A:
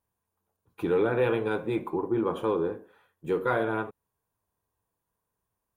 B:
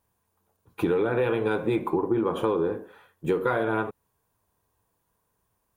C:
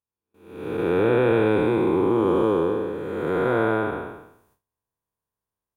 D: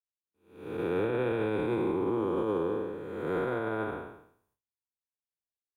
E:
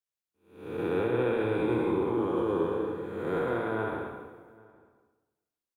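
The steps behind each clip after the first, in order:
downward compressor 10 to 1, threshold −29 dBFS, peak gain reduction 9.5 dB; level +8.5 dB
spectrum smeared in time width 499 ms; automatic gain control gain up to 8 dB; noise gate with hold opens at −53 dBFS
brickwall limiter −15 dBFS, peak gain reduction 6 dB; multiband upward and downward expander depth 40%; level −6.5 dB
slap from a distant wall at 140 metres, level −24 dB; on a send at −3 dB: convolution reverb RT60 1.1 s, pre-delay 58 ms

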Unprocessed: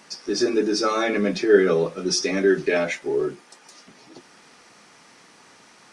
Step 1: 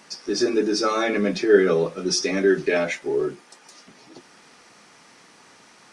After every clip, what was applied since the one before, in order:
no processing that can be heard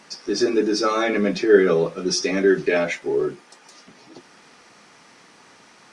high-shelf EQ 8,800 Hz −7 dB
level +1.5 dB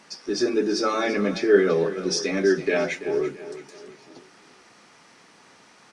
repeating echo 335 ms, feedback 41%, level −13.5 dB
level −3 dB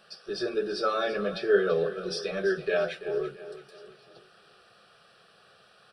phaser with its sweep stopped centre 1,400 Hz, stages 8
level −1.5 dB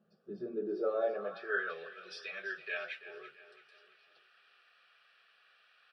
band-pass filter sweep 210 Hz → 2,200 Hz, 0:00.48–0:01.79

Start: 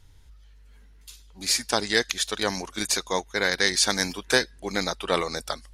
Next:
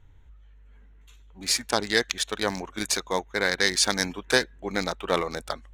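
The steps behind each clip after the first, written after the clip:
adaptive Wiener filter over 9 samples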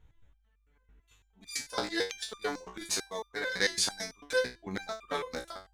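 step-sequenced resonator 9 Hz 62–1,200 Hz
level +3.5 dB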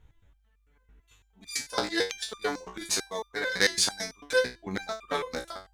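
harmonic generator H 3 −18 dB, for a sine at −12 dBFS
level +7.5 dB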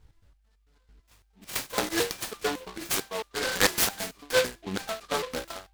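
short delay modulated by noise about 2,400 Hz, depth 0.096 ms
level +1 dB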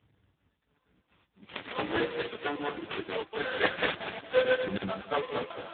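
feedback delay that plays each chunk backwards 117 ms, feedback 41%, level −1 dB
AMR narrowband 5.9 kbit/s 8,000 Hz

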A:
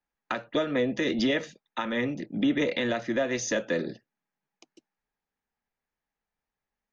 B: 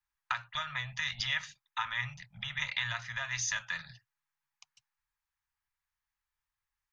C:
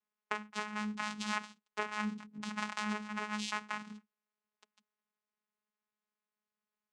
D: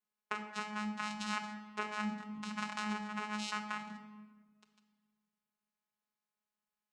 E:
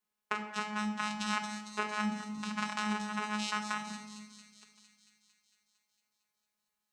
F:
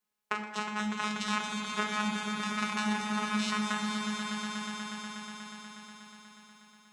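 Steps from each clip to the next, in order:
elliptic band-stop filter 120–990 Hz, stop band 60 dB
channel vocoder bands 4, saw 211 Hz; level −1.5 dB
rectangular room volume 1,400 cubic metres, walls mixed, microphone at 0.97 metres; level −2.5 dB
delay with a high-pass on its return 227 ms, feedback 68%, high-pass 5,200 Hz, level −3.5 dB; level +4 dB
echo that builds up and dies away 121 ms, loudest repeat 5, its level −8 dB; level +1.5 dB

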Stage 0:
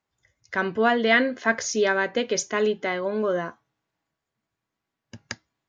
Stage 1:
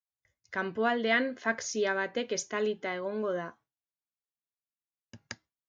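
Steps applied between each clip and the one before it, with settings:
noise gate with hold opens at −51 dBFS
level −7.5 dB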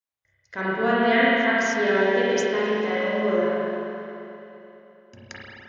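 spring reverb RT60 3.1 s, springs 31/42 ms, chirp 25 ms, DRR −8.5 dB

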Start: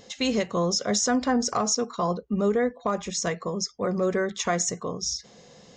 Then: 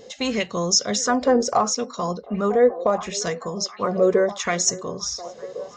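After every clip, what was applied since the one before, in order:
echo through a band-pass that steps 711 ms, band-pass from 480 Hz, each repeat 0.7 octaves, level −10.5 dB
auto-filter bell 0.73 Hz 440–6,800 Hz +12 dB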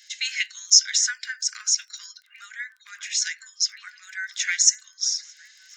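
surface crackle 26 per second −43 dBFS
Chebyshev high-pass with heavy ripple 1,500 Hz, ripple 3 dB
level +4.5 dB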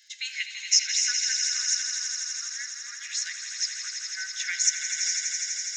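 echo that builds up and dies away 83 ms, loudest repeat 5, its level −9 dB
level −6 dB

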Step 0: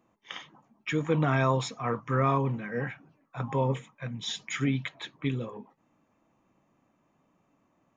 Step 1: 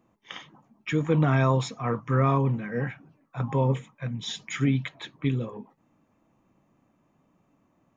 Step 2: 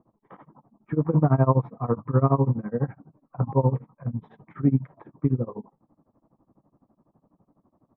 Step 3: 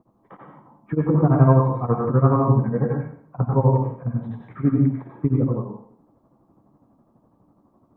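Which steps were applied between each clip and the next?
low-shelf EQ 320 Hz +6 dB
low-pass filter 1,100 Hz 24 dB per octave; amplitude tremolo 12 Hz, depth 94%; level +6.5 dB
in parallel at −2 dB: brickwall limiter −14 dBFS, peak gain reduction 8.5 dB; on the sum: dense smooth reverb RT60 0.56 s, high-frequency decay 0.95×, pre-delay 80 ms, DRR −0.5 dB; level −2.5 dB

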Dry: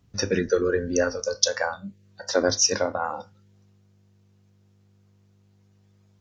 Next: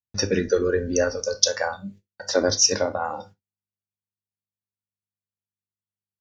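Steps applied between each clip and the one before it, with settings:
noise gate −46 dBFS, range −44 dB
dynamic equaliser 1,300 Hz, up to −4 dB, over −40 dBFS, Q 1.1
reverb whose tail is shaped and stops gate 90 ms falling, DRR 11 dB
level +2 dB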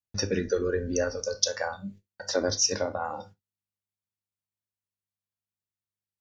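low-shelf EQ 110 Hz +4 dB
in parallel at −2 dB: downward compressor, threshold −27 dBFS, peak gain reduction 14.5 dB
on the sum: level −8 dB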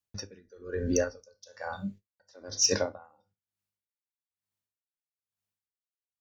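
in parallel at −6.5 dB: hard clipping −18.5 dBFS, distortion −16 dB
on the sum: tremolo with a sine in dB 1.1 Hz, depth 33 dB

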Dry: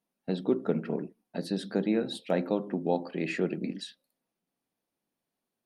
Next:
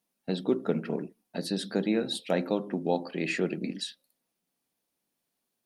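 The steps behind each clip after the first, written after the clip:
high-shelf EQ 2,600 Hz +8 dB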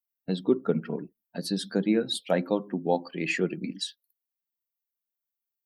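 spectral dynamics exaggerated over time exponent 1.5
level +4.5 dB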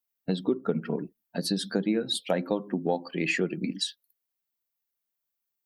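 downward compressor 3 to 1, threshold −28 dBFS, peak gain reduction 9 dB
level +4 dB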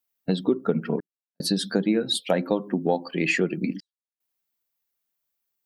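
gate pattern "xxxxx..xxxxxxx" 75 BPM −60 dB
level +4 dB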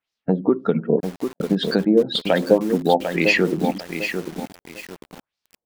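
auto-filter low-pass sine 1.9 Hz 510–5,100 Hz
feedback echo at a low word length 747 ms, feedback 35%, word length 6 bits, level −7 dB
level +3.5 dB

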